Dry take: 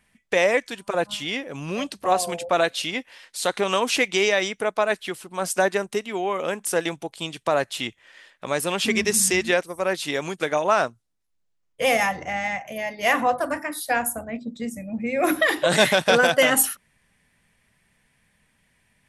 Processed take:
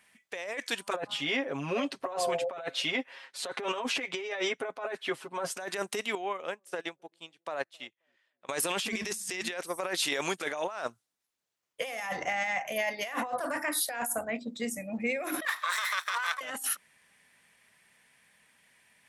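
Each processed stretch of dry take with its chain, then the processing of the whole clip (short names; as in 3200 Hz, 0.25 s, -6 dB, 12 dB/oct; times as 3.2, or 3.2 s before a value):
0.96–5.57 LPF 1300 Hz 6 dB/oct + comb 7.4 ms, depth 81%
6.15–8.49 high shelf 5800 Hz -10 dB + dark delay 0.265 s, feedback 31%, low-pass 540 Hz, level -19 dB + upward expander 2.5:1, over -36 dBFS
15.45–16.41 minimum comb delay 0.53 ms + ladder high-pass 970 Hz, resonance 65%
whole clip: HPF 620 Hz 6 dB/oct; negative-ratio compressor -31 dBFS, ratio -1; gain -2 dB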